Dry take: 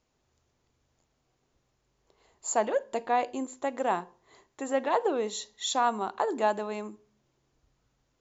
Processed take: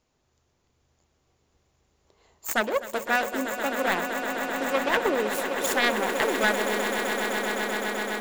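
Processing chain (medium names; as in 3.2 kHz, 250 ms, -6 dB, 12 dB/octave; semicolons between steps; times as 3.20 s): self-modulated delay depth 0.52 ms; echo with a slow build-up 128 ms, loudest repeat 8, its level -11 dB; trim +2.5 dB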